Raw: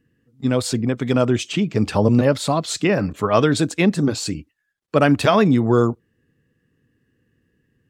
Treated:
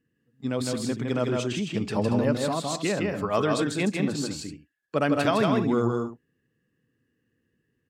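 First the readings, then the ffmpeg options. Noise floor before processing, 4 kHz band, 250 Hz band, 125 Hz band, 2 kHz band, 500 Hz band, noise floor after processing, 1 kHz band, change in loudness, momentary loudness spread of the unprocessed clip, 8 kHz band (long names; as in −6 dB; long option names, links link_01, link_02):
−70 dBFS, −6.5 dB, −7.5 dB, −9.0 dB, −6.5 dB, −7.0 dB, −76 dBFS, −6.5 dB, −7.5 dB, 7 LU, −6.5 dB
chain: -filter_complex "[0:a]lowshelf=frequency=73:gain=-10.5,asplit=2[link_01][link_02];[link_02]aecho=0:1:135|159|193|231:0.112|0.708|0.141|0.251[link_03];[link_01][link_03]amix=inputs=2:normalize=0,volume=-8.5dB"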